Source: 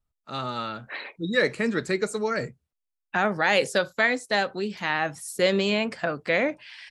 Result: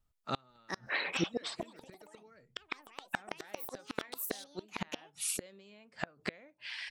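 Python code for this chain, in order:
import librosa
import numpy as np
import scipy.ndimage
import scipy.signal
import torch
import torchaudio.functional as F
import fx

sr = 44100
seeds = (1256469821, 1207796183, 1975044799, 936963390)

y = fx.high_shelf(x, sr, hz=7100.0, db=-11.0, at=(2.21, 3.65))
y = fx.gate_flip(y, sr, shuts_db=-22.0, range_db=-35)
y = fx.echo_pitch(y, sr, ms=497, semitones=6, count=2, db_per_echo=-3.0)
y = F.gain(torch.from_numpy(y), 2.0).numpy()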